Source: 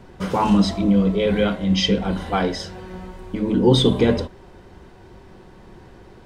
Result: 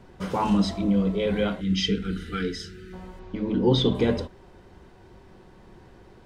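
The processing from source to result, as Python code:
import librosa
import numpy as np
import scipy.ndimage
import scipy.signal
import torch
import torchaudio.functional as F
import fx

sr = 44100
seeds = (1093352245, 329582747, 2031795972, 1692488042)

y = fx.spec_box(x, sr, start_s=1.61, length_s=1.32, low_hz=490.0, high_hz=1200.0, gain_db=-28)
y = fx.lowpass(y, sr, hz=5900.0, slope=24, at=(3.19, 3.95))
y = F.gain(torch.from_numpy(y), -5.5).numpy()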